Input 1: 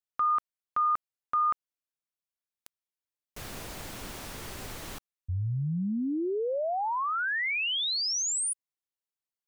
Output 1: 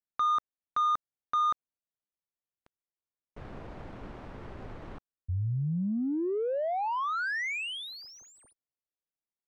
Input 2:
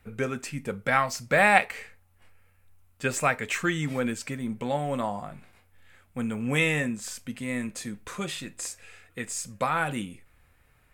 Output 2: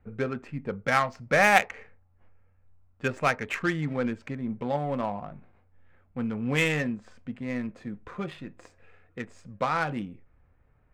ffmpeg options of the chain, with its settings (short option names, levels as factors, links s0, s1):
-af "adynamicsmooth=sensitivity=2:basefreq=1200"